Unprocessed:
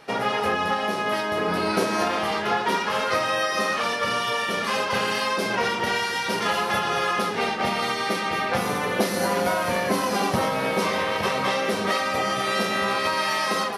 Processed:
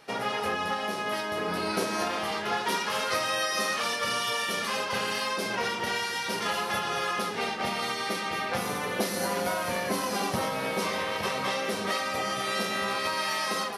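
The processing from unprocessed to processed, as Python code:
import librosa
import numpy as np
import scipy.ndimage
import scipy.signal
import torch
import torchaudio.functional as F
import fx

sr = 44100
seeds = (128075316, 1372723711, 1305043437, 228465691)

y = fx.high_shelf(x, sr, hz=3700.0, db=fx.steps((0.0, 6.0), (2.52, 11.0), (4.66, 5.5)))
y = y * 10.0 ** (-6.5 / 20.0)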